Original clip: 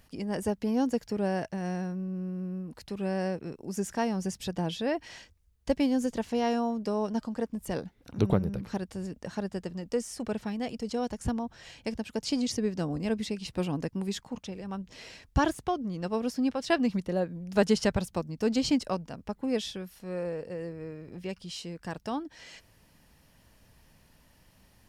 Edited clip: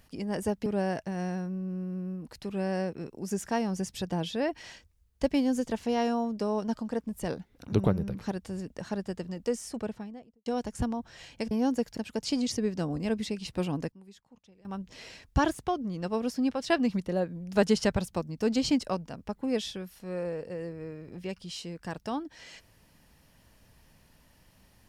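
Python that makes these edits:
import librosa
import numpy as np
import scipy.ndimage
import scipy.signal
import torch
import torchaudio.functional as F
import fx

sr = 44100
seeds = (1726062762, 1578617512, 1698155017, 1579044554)

y = fx.studio_fade_out(x, sr, start_s=10.06, length_s=0.86)
y = fx.edit(y, sr, fx.move(start_s=0.66, length_s=0.46, to_s=11.97),
    fx.fade_down_up(start_s=13.69, length_s=1.19, db=-19.5, fade_s=0.23, curve='log'), tone=tone)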